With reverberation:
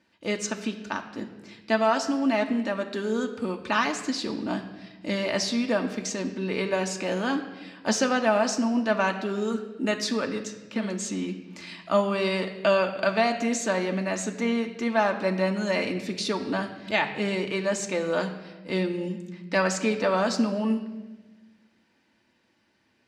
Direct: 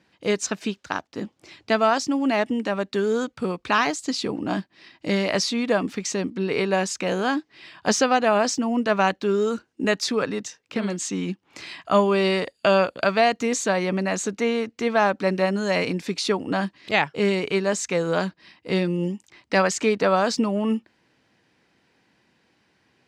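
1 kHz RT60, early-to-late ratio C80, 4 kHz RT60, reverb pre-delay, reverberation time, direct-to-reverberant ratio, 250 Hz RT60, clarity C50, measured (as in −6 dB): 1.1 s, 11.5 dB, 1.1 s, 3 ms, 1.2 s, 3.5 dB, 1.8 s, 10.5 dB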